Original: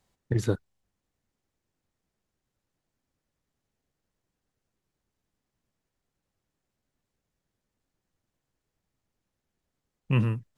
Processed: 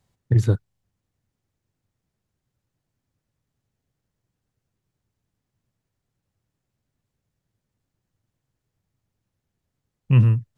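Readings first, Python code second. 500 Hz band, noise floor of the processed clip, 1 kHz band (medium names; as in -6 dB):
+0.5 dB, -82 dBFS, 0.0 dB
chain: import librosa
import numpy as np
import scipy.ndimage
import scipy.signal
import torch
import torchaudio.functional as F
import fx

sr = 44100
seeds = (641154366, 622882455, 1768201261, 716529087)

y = fx.peak_eq(x, sr, hz=110.0, db=11.0, octaves=1.2)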